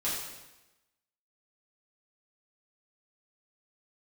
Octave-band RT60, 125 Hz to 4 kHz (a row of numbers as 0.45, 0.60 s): 1.0, 1.1, 1.0, 1.0, 1.0, 0.95 s